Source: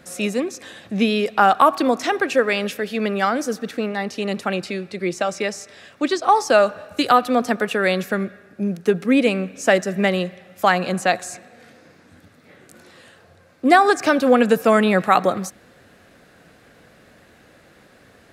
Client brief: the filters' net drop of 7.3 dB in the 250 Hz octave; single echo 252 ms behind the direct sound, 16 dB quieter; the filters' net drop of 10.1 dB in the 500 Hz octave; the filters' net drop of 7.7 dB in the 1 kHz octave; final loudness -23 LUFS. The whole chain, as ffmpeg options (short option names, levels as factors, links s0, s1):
-af "equalizer=f=250:t=o:g=-6.5,equalizer=f=500:t=o:g=-9,equalizer=f=1000:t=o:g=-7,aecho=1:1:252:0.158,volume=1.41"